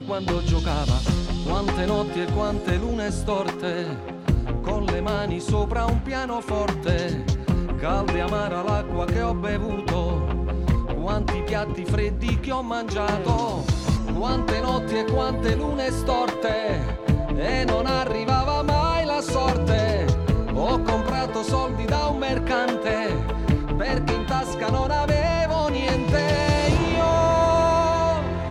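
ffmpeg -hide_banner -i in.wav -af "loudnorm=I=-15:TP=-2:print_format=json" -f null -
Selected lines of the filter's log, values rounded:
"input_i" : "-23.3",
"input_tp" : "-8.0",
"input_lra" : "4.3",
"input_thresh" : "-33.3",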